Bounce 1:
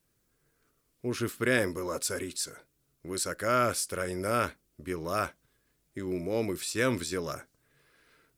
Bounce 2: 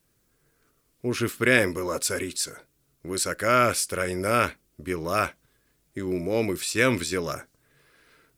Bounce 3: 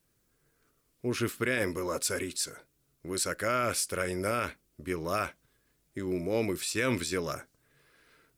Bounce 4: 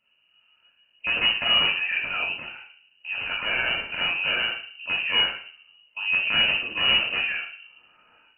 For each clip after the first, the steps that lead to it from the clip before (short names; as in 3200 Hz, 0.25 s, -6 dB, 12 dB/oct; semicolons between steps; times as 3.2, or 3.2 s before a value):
dynamic EQ 2400 Hz, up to +6 dB, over -47 dBFS, Q 2; gain +5 dB
limiter -13 dBFS, peak gain reduction 9 dB; gain -4 dB
wrapped overs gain 22 dB; shoebox room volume 860 m³, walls furnished, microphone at 3.6 m; inverted band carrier 2900 Hz